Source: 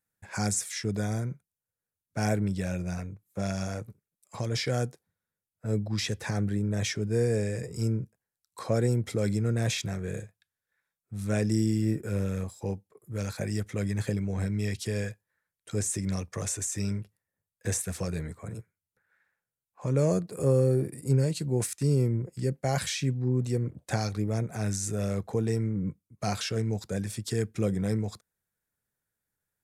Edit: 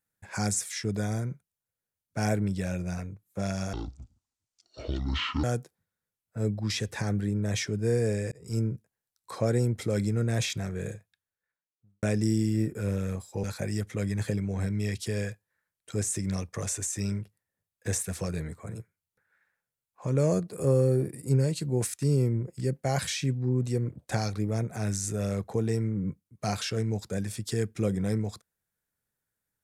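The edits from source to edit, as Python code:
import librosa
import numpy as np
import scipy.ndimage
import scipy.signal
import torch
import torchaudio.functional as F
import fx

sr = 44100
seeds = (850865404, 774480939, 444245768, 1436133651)

y = fx.studio_fade_out(x, sr, start_s=10.21, length_s=1.1)
y = fx.edit(y, sr, fx.speed_span(start_s=3.73, length_s=0.99, speed=0.58),
    fx.fade_in_span(start_s=7.6, length_s=0.27),
    fx.cut(start_s=12.72, length_s=0.51), tone=tone)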